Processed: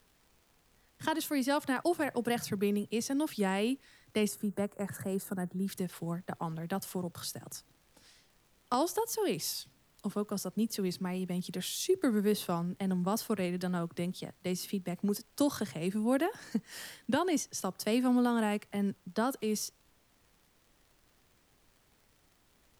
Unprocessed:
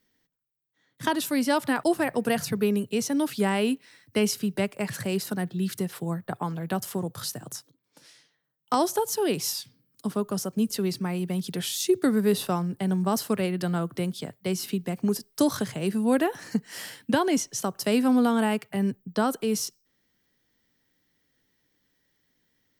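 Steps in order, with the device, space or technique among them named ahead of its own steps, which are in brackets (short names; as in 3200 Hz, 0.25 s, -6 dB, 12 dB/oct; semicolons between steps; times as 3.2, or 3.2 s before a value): vinyl LP (wow and flutter; crackle; pink noise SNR 34 dB); 4.28–5.68 band shelf 3500 Hz -13 dB; gain -6.5 dB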